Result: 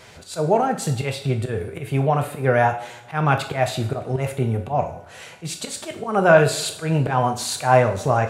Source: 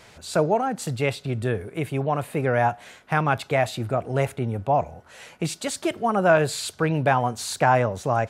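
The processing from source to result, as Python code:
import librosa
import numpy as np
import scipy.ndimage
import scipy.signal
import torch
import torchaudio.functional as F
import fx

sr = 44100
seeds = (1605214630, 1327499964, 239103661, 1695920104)

y = fx.auto_swell(x, sr, attack_ms=125.0)
y = fx.rev_double_slope(y, sr, seeds[0], early_s=0.51, late_s=1.7, knee_db=-18, drr_db=4.5)
y = F.gain(torch.from_numpy(y), 3.0).numpy()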